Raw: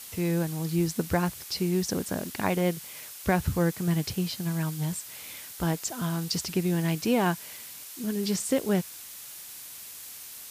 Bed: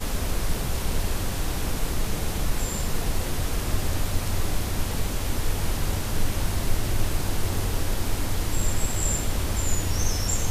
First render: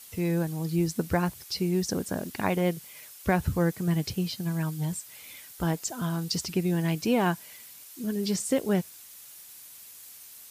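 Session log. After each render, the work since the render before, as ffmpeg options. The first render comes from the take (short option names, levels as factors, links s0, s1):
-af "afftdn=nr=7:nf=-44"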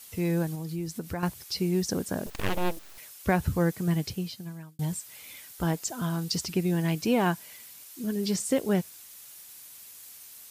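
-filter_complex "[0:a]asettb=1/sr,asplit=3[s0][s1][s2];[s0]atrim=end=0.554[s3];[s1]atrim=start=0.55:end=1.23,asetpts=PTS-STARTPTS,afade=t=in:d=0.004:c=qsin,afade=t=out:st=0.676:d=0.004:c=qsin,acompressor=threshold=0.0178:ratio=2:attack=3.2:release=140:knee=1:detection=peak[s4];[s2]atrim=start=1.226[s5];[s3][s4]acrossfade=d=0.004:c1=hsin:c2=qsin[s6];[s6][s5]acrossfade=d=0.004:c1=qsin:c2=hsin,asettb=1/sr,asplit=3[s7][s8][s9];[s7]atrim=end=2.264[s10];[s8]atrim=start=2.26:end=2.98,asetpts=PTS-STARTPTS,afade=t=in:d=0.004:c=qsin,afade=t=out:st=0.716:d=0.004:c=qsin,aeval=exprs='abs(val(0))':c=same[s11];[s9]atrim=start=2.976[s12];[s10][s11]acrossfade=d=0.004:c1=hsin:c2=qsin[s13];[s13][s12]acrossfade=d=0.004:c1=qsin:c2=hsin,asplit=2[s14][s15];[s14]atrim=end=4.79,asetpts=PTS-STARTPTS,afade=t=out:st=3.91:d=0.88[s16];[s15]atrim=start=4.79,asetpts=PTS-STARTPTS,afade=t=in:d=0.004:c=hsin[s17];[s16][s17]concat=n=2:v=0:a=1"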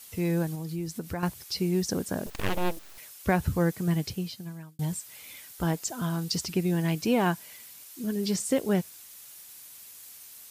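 -af anull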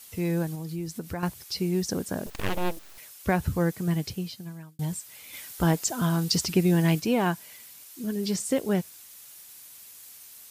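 -filter_complex "[0:a]asettb=1/sr,asplit=3[s0][s1][s2];[s0]atrim=end=5.334[s3];[s1]atrim=start=5.33:end=7,asetpts=PTS-STARTPTS,afade=t=in:d=0.004:c=qsin,afade=t=out:st=1.666:d=0.004:c=qsin,acontrast=24[s4];[s2]atrim=start=6.996[s5];[s3][s4]acrossfade=d=0.004:c1=hsin:c2=qsin[s6];[s6][s5]acrossfade=d=0.004:c1=qsin:c2=hsin"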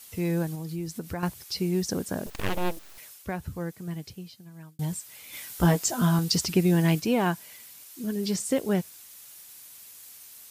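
-filter_complex "[0:a]asettb=1/sr,asplit=3[s0][s1][s2];[s0]atrim=end=5.304[s3];[s1]atrim=start=5.3:end=6.19,asetpts=PTS-STARTPTS,afade=t=in:d=0.004:c=qsin,afade=t=out:st=0.886:d=0.004:c=qsin,asplit=2[s4][s5];[s5]adelay=17,volume=0.596[s6];[s4][s6]amix=inputs=2:normalize=0,atrim=end_sample=39249[s7];[s2]atrim=start=6.186[s8];[s3][s7]acrossfade=d=0.004:c1=hsin:c2=qsin[s9];[s9][s8]acrossfade=d=0.004:c1=qsin:c2=hsin,asplit=3[s10][s11][s12];[s10]atrim=end=3.28,asetpts=PTS-STARTPTS,afade=t=out:st=3.13:d=0.15:silence=0.375837[s13];[s11]atrim=start=3.28:end=4.51,asetpts=PTS-STARTPTS,volume=0.376[s14];[s12]atrim=start=4.51,asetpts=PTS-STARTPTS,afade=t=in:d=0.15:silence=0.375837[s15];[s13][s14][s15]concat=n=3:v=0:a=1"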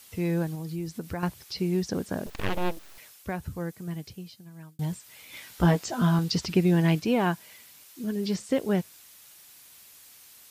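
-filter_complex "[0:a]acrossover=split=5100[s0][s1];[s1]acompressor=threshold=0.00355:ratio=4:attack=1:release=60[s2];[s0][s2]amix=inputs=2:normalize=0"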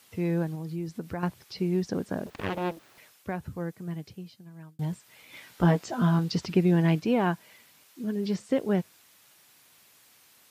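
-af "highpass=100,highshelf=f=3500:g=-9"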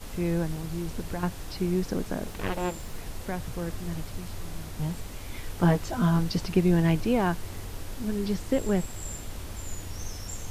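-filter_complex "[1:a]volume=0.251[s0];[0:a][s0]amix=inputs=2:normalize=0"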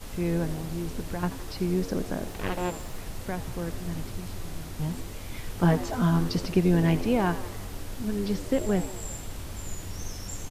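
-filter_complex "[0:a]asplit=7[s0][s1][s2][s3][s4][s5][s6];[s1]adelay=84,afreqshift=90,volume=0.178[s7];[s2]adelay=168,afreqshift=180,volume=0.104[s8];[s3]adelay=252,afreqshift=270,volume=0.0596[s9];[s4]adelay=336,afreqshift=360,volume=0.0347[s10];[s5]adelay=420,afreqshift=450,volume=0.0202[s11];[s6]adelay=504,afreqshift=540,volume=0.0116[s12];[s0][s7][s8][s9][s10][s11][s12]amix=inputs=7:normalize=0"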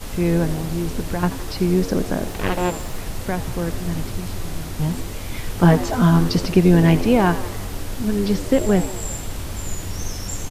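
-af "volume=2.66,alimiter=limit=0.708:level=0:latency=1"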